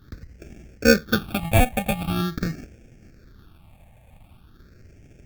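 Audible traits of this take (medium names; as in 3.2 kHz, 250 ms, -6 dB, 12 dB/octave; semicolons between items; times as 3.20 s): aliases and images of a low sample rate 1 kHz, jitter 0%; phasing stages 6, 0.44 Hz, lowest notch 360–1100 Hz; Vorbis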